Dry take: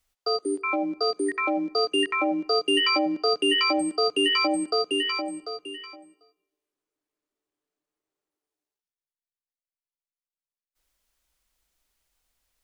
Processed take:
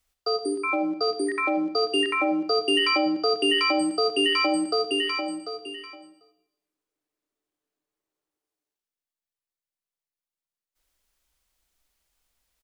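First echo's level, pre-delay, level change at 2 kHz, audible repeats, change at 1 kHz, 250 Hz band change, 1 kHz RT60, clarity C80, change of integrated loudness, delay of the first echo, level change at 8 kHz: -14.0 dB, 27 ms, +1.0 dB, 1, +0.5 dB, +1.0 dB, 0.65 s, 16.0 dB, +0.5 dB, 73 ms, -0.5 dB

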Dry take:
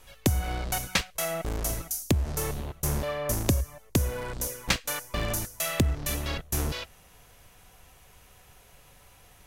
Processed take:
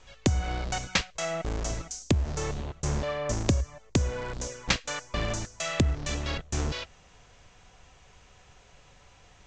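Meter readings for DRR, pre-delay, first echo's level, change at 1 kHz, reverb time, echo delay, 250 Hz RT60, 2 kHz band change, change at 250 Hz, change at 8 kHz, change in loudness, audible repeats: no reverb, no reverb, no echo, 0.0 dB, no reverb, no echo, no reverb, 0.0 dB, 0.0 dB, -3.5 dB, -1.0 dB, no echo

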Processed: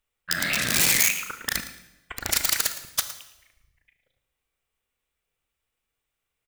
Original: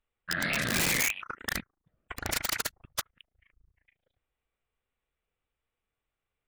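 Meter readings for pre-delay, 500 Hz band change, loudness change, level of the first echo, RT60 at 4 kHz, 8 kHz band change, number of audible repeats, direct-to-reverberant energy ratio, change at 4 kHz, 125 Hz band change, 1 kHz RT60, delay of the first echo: 23 ms, +0.5 dB, +7.5 dB, -14.0 dB, 0.85 s, +9.5 dB, 2, 8.5 dB, +7.5 dB, +0.5 dB, 0.95 s, 112 ms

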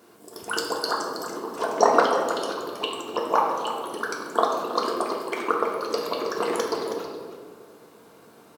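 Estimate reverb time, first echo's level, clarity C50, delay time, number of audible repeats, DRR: 1.8 s, -10.5 dB, 2.0 dB, 321 ms, 1, -2.0 dB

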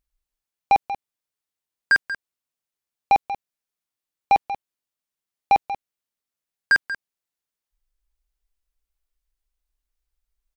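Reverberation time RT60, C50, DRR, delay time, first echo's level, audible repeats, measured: no reverb, no reverb, no reverb, 186 ms, -12.5 dB, 1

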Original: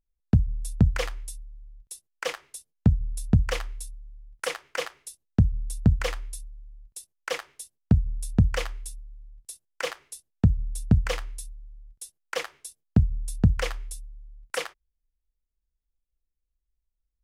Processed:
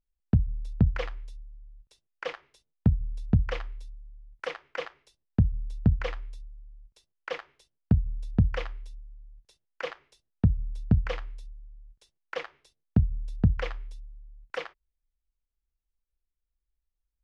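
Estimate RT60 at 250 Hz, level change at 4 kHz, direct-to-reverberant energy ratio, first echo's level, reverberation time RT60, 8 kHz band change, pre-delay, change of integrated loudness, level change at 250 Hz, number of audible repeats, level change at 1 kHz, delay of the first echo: no reverb, -8.0 dB, no reverb, no echo, no reverb, under -20 dB, no reverb, -3.0 dB, -2.5 dB, no echo, -3.5 dB, no echo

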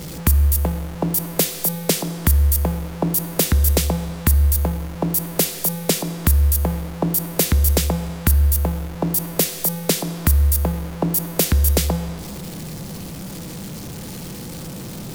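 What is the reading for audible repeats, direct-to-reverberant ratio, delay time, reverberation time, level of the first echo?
no echo, 11.0 dB, no echo, 2.0 s, no echo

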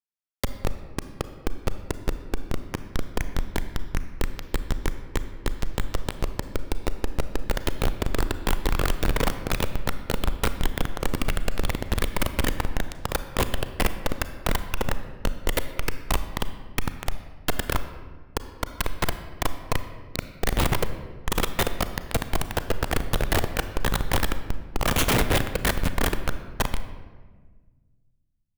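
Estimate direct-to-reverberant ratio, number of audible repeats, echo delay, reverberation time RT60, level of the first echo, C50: 10.0 dB, no echo, no echo, 1.5 s, no echo, 11.0 dB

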